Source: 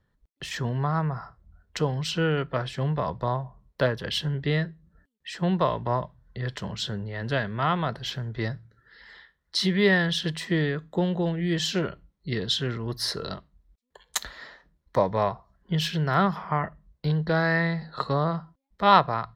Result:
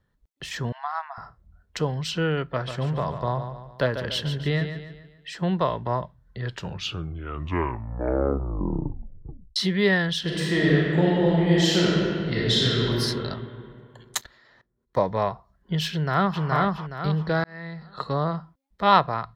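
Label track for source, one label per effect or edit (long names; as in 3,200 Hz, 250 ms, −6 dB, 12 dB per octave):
0.720000	1.180000	linear-phase brick-wall band-pass 650–7,700 Hz
2.500000	5.330000	repeating echo 143 ms, feedback 44%, level −9 dB
6.380000	6.380000	tape stop 3.18 s
10.210000	12.970000	thrown reverb, RT60 2.5 s, DRR −5.5 dB
14.210000	14.970000	output level in coarse steps of 19 dB
15.910000	16.440000	delay throw 420 ms, feedback 35%, level −1 dB
17.440000	18.210000	fade in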